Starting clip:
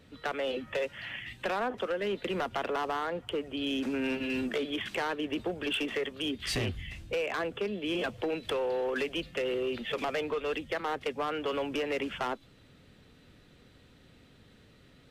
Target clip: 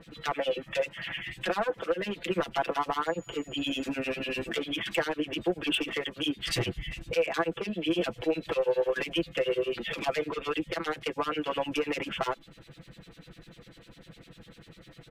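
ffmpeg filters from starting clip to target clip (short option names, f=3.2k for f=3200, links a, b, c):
-filter_complex "[0:a]aecho=1:1:6:0.88,acrossover=split=2100[a][b];[a]aeval=exprs='val(0)*(1-1/2+1/2*cos(2*PI*10*n/s))':c=same[c];[b]aeval=exprs='val(0)*(1-1/2-1/2*cos(2*PI*10*n/s))':c=same[d];[c][d]amix=inputs=2:normalize=0,asplit=2[e][f];[f]acompressor=threshold=-44dB:ratio=6,volume=1dB[g];[e][g]amix=inputs=2:normalize=0,asettb=1/sr,asplit=3[h][i][j];[h]atrim=end=3.064[k];[i]atrim=start=3.06:end=3.88,asetpts=PTS-STARTPTS,afade=t=in:d=0.004:c=qsin,afade=t=out:st=0.816:d=0.004:c=qsin,aeval=exprs='val(0)+0.00126*sin(2*PI*6900*n/s)':c=same[l];[j]atrim=start=3.876[m];[k][l]acrossfade=d=0.004:c1=hsin:c2=qsin[n];[n][m]acrossfade=d=0.004:c1=qsin:c2=hsin,volume=2.5dB"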